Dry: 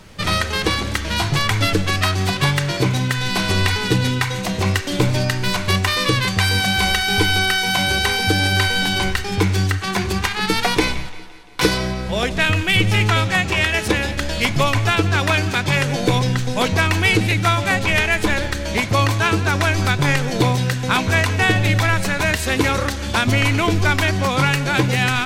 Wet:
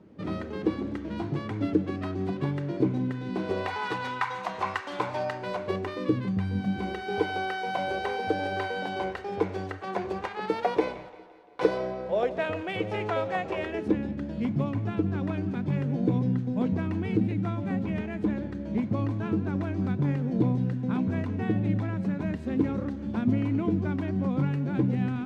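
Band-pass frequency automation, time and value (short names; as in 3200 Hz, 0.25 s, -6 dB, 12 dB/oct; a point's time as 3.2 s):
band-pass, Q 2.2
3.32 s 290 Hz
3.87 s 1000 Hz
5.03 s 1000 Hz
6.51 s 180 Hz
7.24 s 550 Hz
13.51 s 550 Hz
14.01 s 220 Hz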